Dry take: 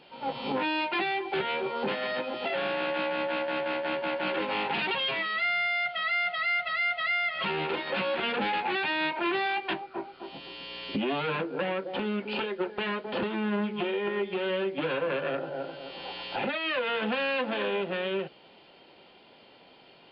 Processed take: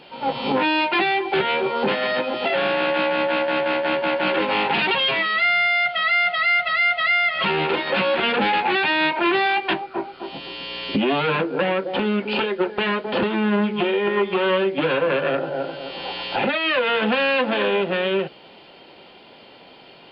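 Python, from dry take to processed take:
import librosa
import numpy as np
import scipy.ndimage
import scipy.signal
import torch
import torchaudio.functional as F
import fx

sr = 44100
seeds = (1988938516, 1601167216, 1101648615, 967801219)

y = fx.peak_eq(x, sr, hz=1100.0, db=10.0, octaves=0.51, at=(14.17, 14.58))
y = y * librosa.db_to_amplitude(9.0)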